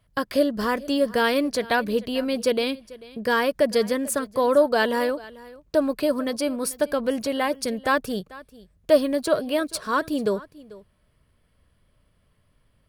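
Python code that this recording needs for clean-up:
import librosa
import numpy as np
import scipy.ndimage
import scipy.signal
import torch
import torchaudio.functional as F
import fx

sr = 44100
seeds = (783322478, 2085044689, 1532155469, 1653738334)

y = fx.fix_echo_inverse(x, sr, delay_ms=442, level_db=-20.0)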